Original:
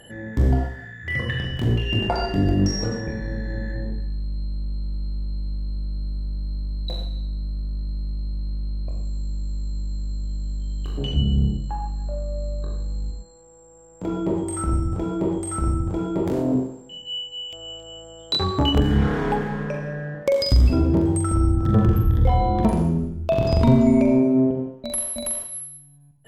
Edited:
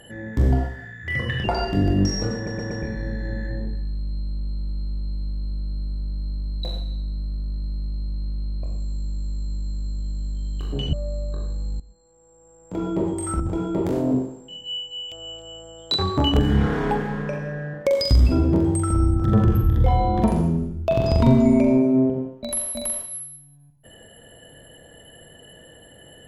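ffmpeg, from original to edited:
-filter_complex "[0:a]asplit=8[a][b][c][d][e][f][g][h];[a]atrim=end=1.442[i];[b]atrim=start=2.048:end=3.082[j];[c]atrim=start=2.958:end=3.082[k];[d]atrim=start=2.958:end=3.082[l];[e]atrim=start=2.958:end=11.182[m];[f]atrim=start=12.228:end=13.1,asetpts=PTS-STARTPTS,afade=t=out:st=0.868:d=0.004:c=hsin:silence=0.158489[n];[g]atrim=start=13.1:end=14.702,asetpts=PTS-STARTPTS,afade=t=in:d=1.06:silence=0.158489[o];[h]atrim=start=15.808[p];[i][j]acrossfade=d=0.004:c1=hsin:c2=hsin[q];[q][k]acrossfade=d=0.004:c1=hsin:c2=hsin[r];[r][l]acrossfade=d=0.004:c1=hsin:c2=hsin[s];[s][m]acrossfade=d=0.004:c1=hsin:c2=hsin[t];[n][o]concat=n=2:v=0:a=1[u];[t][u]acrossfade=d=0.004:c1=hsin:c2=hsin[v];[v][p]acrossfade=d=0.004:c1=hsin:c2=hsin"

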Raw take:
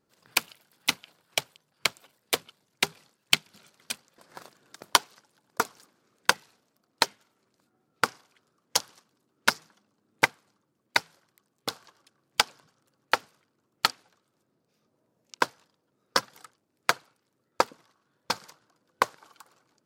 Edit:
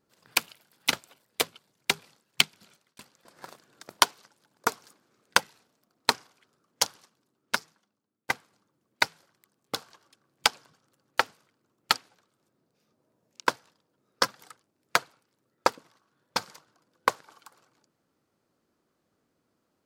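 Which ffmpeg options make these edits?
-filter_complex "[0:a]asplit=5[a][b][c][d][e];[a]atrim=end=0.932[f];[b]atrim=start=1.858:end=3.92,asetpts=PTS-STARTPTS,afade=t=out:st=1.492:d=0.57:c=qsin[g];[c]atrim=start=3.92:end=7.032,asetpts=PTS-STARTPTS,afade=t=in:d=0.004:c=hsin[h];[d]atrim=start=8.038:end=10.24,asetpts=PTS-STARTPTS,afade=t=out:st=0.742:d=1.46:silence=0.0891251[i];[e]atrim=start=10.24,asetpts=PTS-STARTPTS,afade=t=in:d=0.004:c=hsin:silence=0.0891251[j];[g][h]concat=n=2:v=0:a=1[k];[f][k]acrossfade=d=0.004:c1=hsin:c2=hsin[l];[i][j]concat=n=2:v=0:a=1[m];[l][m]acrossfade=d=0.004:c1=hsin:c2=hsin"

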